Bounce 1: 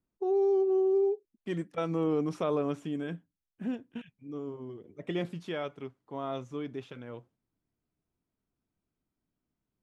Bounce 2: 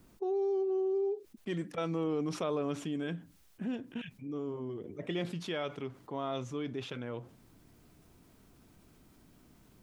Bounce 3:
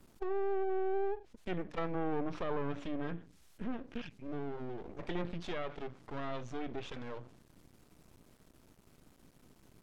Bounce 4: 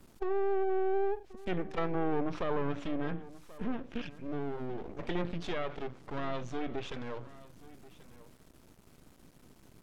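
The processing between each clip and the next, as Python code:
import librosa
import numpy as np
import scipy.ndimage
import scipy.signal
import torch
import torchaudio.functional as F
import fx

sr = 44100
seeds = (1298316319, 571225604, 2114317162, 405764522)

y1 = fx.dynamic_eq(x, sr, hz=3900.0, q=0.88, threshold_db=-55.0, ratio=4.0, max_db=5)
y1 = fx.env_flatten(y1, sr, amount_pct=50)
y1 = F.gain(torch.from_numpy(y1), -6.0).numpy()
y2 = np.maximum(y1, 0.0)
y2 = fx.env_lowpass_down(y2, sr, base_hz=2200.0, full_db=-34.5)
y2 = F.gain(torch.from_numpy(y2), 2.5).numpy()
y3 = y2 + 10.0 ** (-18.5 / 20.0) * np.pad(y2, (int(1084 * sr / 1000.0), 0))[:len(y2)]
y3 = F.gain(torch.from_numpy(y3), 3.5).numpy()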